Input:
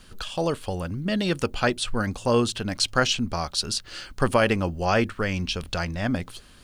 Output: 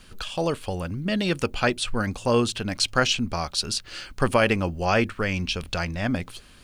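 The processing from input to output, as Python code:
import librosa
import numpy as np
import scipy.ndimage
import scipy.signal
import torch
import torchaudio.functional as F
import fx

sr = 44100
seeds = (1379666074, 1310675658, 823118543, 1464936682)

y = fx.peak_eq(x, sr, hz=2400.0, db=4.0, octaves=0.39)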